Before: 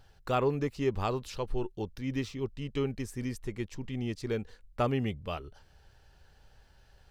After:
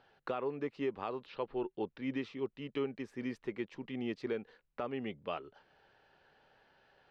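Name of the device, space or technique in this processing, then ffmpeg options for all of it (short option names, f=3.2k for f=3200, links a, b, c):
DJ mixer with the lows and highs turned down: -filter_complex "[0:a]asettb=1/sr,asplit=3[a][b][c];[a]atrim=end=1.264[d];[b]atrim=start=1.26:end=2.02,asetpts=PTS-STARTPTS,afade=t=in:d=0.004:c=qsin,afade=t=out:st=0.756:d=0.004:c=qsin,lowpass=f=4.6k:w=0.5412,lowpass=f=4.6k:w=1.3066[e];[c]atrim=start=2.016[f];[d][e]acrossfade=d=0.004:c1=hsin:c2=qsin[g];[g][f]acrossfade=d=0.004:c1=qsin:c2=hsin,bass=f=250:g=-4,treble=f=4k:g=-8,acrossover=split=160 4700:gain=0.0631 1 0.1[h][i][j];[h][i][j]amix=inputs=3:normalize=0,alimiter=level_in=2.5dB:limit=-24dB:level=0:latency=1:release=477,volume=-2.5dB,volume=1dB"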